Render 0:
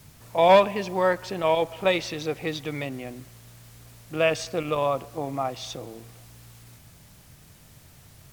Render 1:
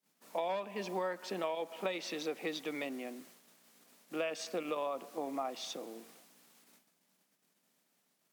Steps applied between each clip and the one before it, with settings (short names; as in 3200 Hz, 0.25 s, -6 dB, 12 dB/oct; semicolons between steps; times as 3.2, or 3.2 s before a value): steep high-pass 190 Hz 48 dB/oct; gate -52 dBFS, range -27 dB; compressor 20:1, threshold -26 dBFS, peak gain reduction 16.5 dB; gain -6 dB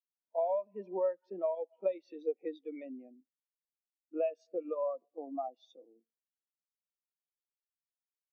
spectral expander 2.5:1; gain +1 dB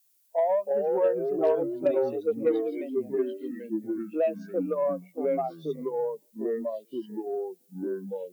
echoes that change speed 0.255 s, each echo -3 st, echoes 3; added noise violet -74 dBFS; added harmonics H 5 -29 dB, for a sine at -20.5 dBFS; gain +6.5 dB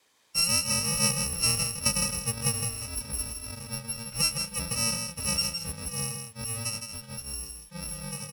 FFT order left unsorted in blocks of 128 samples; air absorption 52 m; echo 0.161 s -6.5 dB; gain +5 dB